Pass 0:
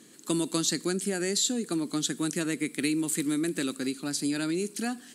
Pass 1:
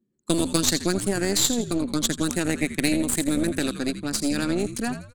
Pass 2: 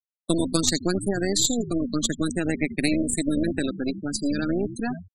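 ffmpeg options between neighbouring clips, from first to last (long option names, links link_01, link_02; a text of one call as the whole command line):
ffmpeg -i in.wav -filter_complex "[0:a]anlmdn=2.51,asplit=5[link_01][link_02][link_03][link_04][link_05];[link_02]adelay=83,afreqshift=-74,volume=-10dB[link_06];[link_03]adelay=166,afreqshift=-148,volume=-18.2dB[link_07];[link_04]adelay=249,afreqshift=-222,volume=-26.4dB[link_08];[link_05]adelay=332,afreqshift=-296,volume=-34.5dB[link_09];[link_01][link_06][link_07][link_08][link_09]amix=inputs=5:normalize=0,aeval=exprs='0.237*(cos(1*acos(clip(val(0)/0.237,-1,1)))-cos(1*PI/2))+0.0422*(cos(2*acos(clip(val(0)/0.237,-1,1)))-cos(2*PI/2))+0.0266*(cos(3*acos(clip(val(0)/0.237,-1,1)))-cos(3*PI/2))+0.0211*(cos(6*acos(clip(val(0)/0.237,-1,1)))-cos(6*PI/2))+0.00668*(cos(8*acos(clip(val(0)/0.237,-1,1)))-cos(8*PI/2))':channel_layout=same,volume=7dB" out.wav
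ffmpeg -i in.wav -af "afftfilt=real='re*gte(hypot(re,im),0.0631)':imag='im*gte(hypot(re,im),0.0631)':win_size=1024:overlap=0.75" out.wav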